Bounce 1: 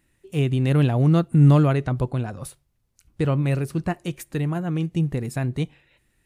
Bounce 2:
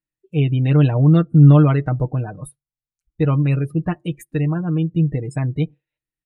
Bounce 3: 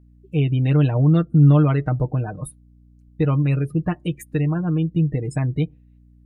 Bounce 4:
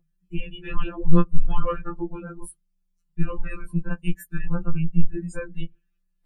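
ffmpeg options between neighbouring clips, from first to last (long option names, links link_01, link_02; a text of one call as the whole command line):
ffmpeg -i in.wav -af "aecho=1:1:6.5:0.65,afftdn=noise_reduction=29:noise_floor=-35,volume=1dB" out.wav
ffmpeg -i in.wav -filter_complex "[0:a]asplit=2[link_01][link_02];[link_02]acompressor=threshold=-23dB:ratio=6,volume=3dB[link_03];[link_01][link_03]amix=inputs=2:normalize=0,aeval=exprs='val(0)+0.00631*(sin(2*PI*60*n/s)+sin(2*PI*2*60*n/s)/2+sin(2*PI*3*60*n/s)/3+sin(2*PI*4*60*n/s)/4+sin(2*PI*5*60*n/s)/5)':channel_layout=same,volume=-5.5dB" out.wav
ffmpeg -i in.wav -af "afreqshift=-160,afftfilt=real='re*2.83*eq(mod(b,8),0)':imag='im*2.83*eq(mod(b,8),0)':win_size=2048:overlap=0.75" out.wav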